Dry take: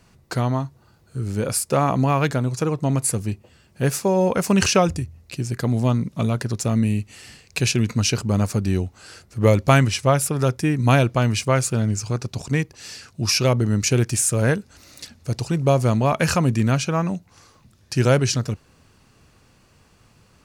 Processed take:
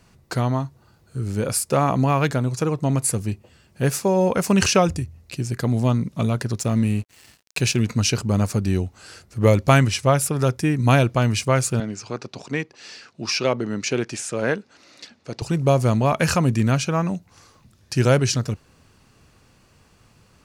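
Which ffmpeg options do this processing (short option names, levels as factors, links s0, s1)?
-filter_complex "[0:a]asettb=1/sr,asplit=3[s0][s1][s2];[s0]atrim=end=6.594[s3];[s1]atrim=start=6.59:end=7.9,asetpts=PTS-STARTPTS,afade=t=in:d=0.004:c=qsin,afade=t=out:st=1.306:d=0.004:c=qsin,aeval=exprs='sgn(val(0))*max(abs(val(0))-0.00668,0)':c=same[s4];[s2]atrim=start=7.896[s5];[s3][s4]acrossfade=d=0.004:c1=hsin:c2=qsin[s6];[s6][s5]acrossfade=d=0.004:c1=qsin:c2=hsin,asettb=1/sr,asplit=3[s7][s8][s9];[s7]atrim=end=11.804[s10];[s8]atrim=start=11.8:end=15.42,asetpts=PTS-STARTPTS,afade=t=in:d=0.004:c=qsin,afade=t=out:st=3.616:d=0.004:c=qsin,highpass=250,lowpass=4700[s11];[s9]atrim=start=15.416[s12];[s10][s11]acrossfade=d=0.004:c1=hsin:c2=qsin[s13];[s13][s12]acrossfade=d=0.004:c1=qsin:c2=hsin"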